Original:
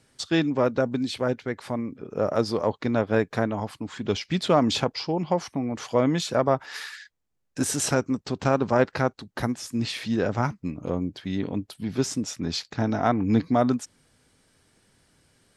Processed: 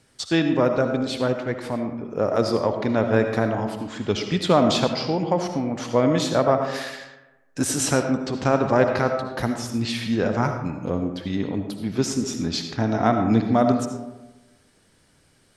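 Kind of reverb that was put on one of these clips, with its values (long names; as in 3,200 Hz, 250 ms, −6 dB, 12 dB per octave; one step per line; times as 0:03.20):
comb and all-pass reverb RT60 1.1 s, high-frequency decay 0.45×, pre-delay 35 ms, DRR 5.5 dB
level +2 dB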